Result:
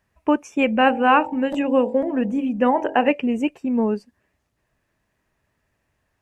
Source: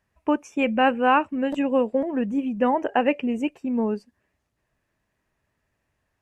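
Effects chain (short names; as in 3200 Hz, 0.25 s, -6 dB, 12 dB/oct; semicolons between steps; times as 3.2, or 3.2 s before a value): 0.66–3.11 de-hum 45.85 Hz, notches 21; gain +3.5 dB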